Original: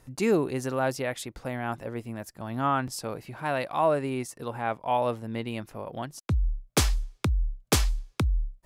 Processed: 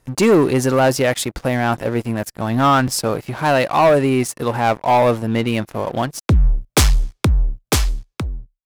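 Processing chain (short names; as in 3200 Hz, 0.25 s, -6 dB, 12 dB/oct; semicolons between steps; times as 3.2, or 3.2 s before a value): ending faded out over 1.95 s; sample leveller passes 3; gain +3.5 dB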